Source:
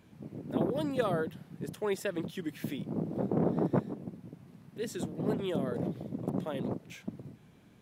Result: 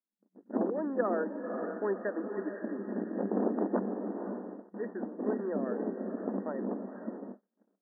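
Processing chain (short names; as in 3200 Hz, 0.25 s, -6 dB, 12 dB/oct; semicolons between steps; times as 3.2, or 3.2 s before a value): diffused feedback echo 0.521 s, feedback 50%, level -6.5 dB; gate -39 dBFS, range -42 dB; FFT band-pass 190–1900 Hz; ending taper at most 370 dB/s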